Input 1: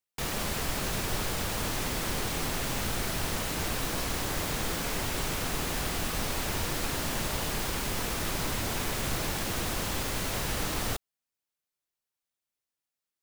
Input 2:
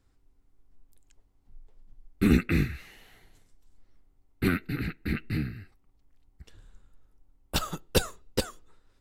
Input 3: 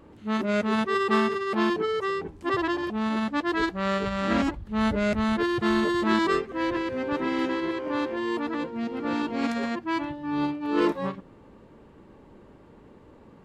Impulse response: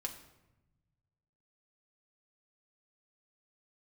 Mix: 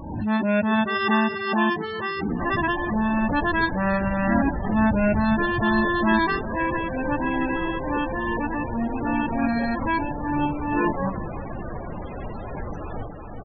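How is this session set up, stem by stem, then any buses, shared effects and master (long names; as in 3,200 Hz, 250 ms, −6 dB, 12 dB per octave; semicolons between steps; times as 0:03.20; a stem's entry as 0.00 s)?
−1.0 dB, 2.10 s, no send, echo send −4.5 dB, parametric band 730 Hz +3 dB 1.1 octaves
−6.5 dB, 0.00 s, no send, no echo send, running median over 15 samples; Butterworth high-pass 150 Hz 48 dB per octave
+3.0 dB, 0.00 s, no send, echo send −17.5 dB, comb filter 1.2 ms, depth 64%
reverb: not used
echo: repeating echo 373 ms, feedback 49%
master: spectral peaks only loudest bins 32; background raised ahead of every attack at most 55 dB per second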